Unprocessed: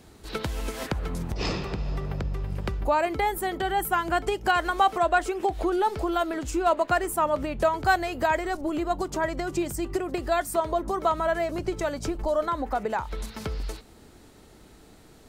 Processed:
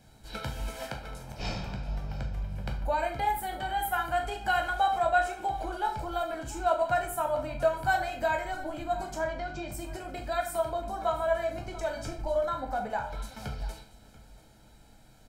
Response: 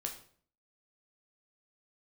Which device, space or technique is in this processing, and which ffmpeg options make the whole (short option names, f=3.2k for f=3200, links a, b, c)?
microphone above a desk: -filter_complex "[0:a]asettb=1/sr,asplit=3[a][b][c];[a]atrim=end=0.794[d];[b]atrim=start=0.79:end=1.4,asetpts=PTS-STARTPTS,afade=t=in:d=0.004:c=qsin,afade=t=out:st=0.606:d=0.004:c=qsin,bass=f=250:g=-8,treble=f=4k:g=-1[e];[c]atrim=start=1.396[f];[d][e]acrossfade=d=0.004:c1=hsin:c2=qsin[g];[g][f]acrossfade=d=0.004:c1=qsin:c2=hsin,asettb=1/sr,asplit=3[h][i][j];[h]atrim=end=9.174[k];[i]atrim=start=9.17:end=9.72,asetpts=PTS-STARTPTS,afade=t=in:d=0.004:c=qsin,afade=t=out:st=0.546:d=0.004:c=qsin,lowpass=f=5.3k:w=0.5412,lowpass=f=5.3k:w=1.3066[l];[j]atrim=start=9.716[m];[k][l]acrossfade=d=0.004:c1=hsin:c2=qsin[n];[n][m]acrossfade=d=0.004:c1=qsin:c2=hsin,aecho=1:1:1.3:0.66,asplit=2[o][p];[p]adelay=38,volume=-13.5dB[q];[o][q]amix=inputs=2:normalize=0,aecho=1:1:686:0.119[r];[1:a]atrim=start_sample=2205[s];[r][s]afir=irnorm=-1:irlink=0,volume=-6.5dB"